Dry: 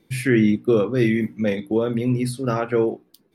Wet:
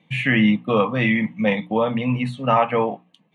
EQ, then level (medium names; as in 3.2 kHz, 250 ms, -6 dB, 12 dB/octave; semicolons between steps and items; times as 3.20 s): dynamic bell 1 kHz, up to +8 dB, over -39 dBFS, Q 1.2; cabinet simulation 170–6100 Hz, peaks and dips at 170 Hz +9 dB, 390 Hz +4 dB, 1.3 kHz +9 dB, 2.9 kHz +7 dB; static phaser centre 1.4 kHz, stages 6; +5.0 dB